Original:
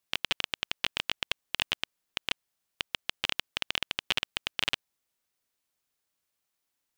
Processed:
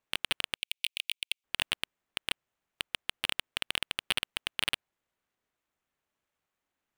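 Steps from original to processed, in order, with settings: median filter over 9 samples; 0.56–1.44 s: Chebyshev high-pass 2.3 kHz, order 5; trim +2.5 dB

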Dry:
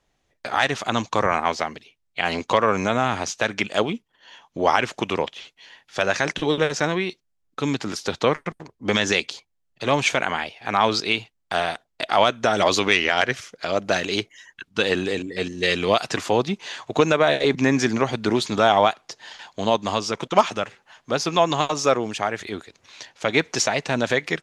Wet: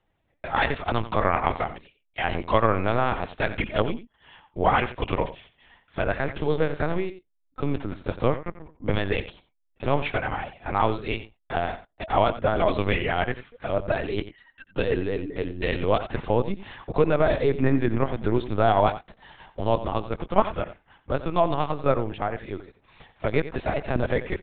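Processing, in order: LPC vocoder at 8 kHz pitch kept; low-pass 2.1 kHz 6 dB/octave, from 5.23 s 1 kHz; delay 89 ms -14 dB; trim -1 dB

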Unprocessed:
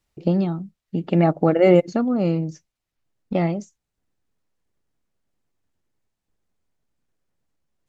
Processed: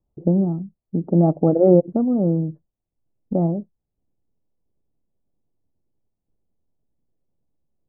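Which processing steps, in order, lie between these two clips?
Bessel low-pass 560 Hz, order 6; trim +2.5 dB

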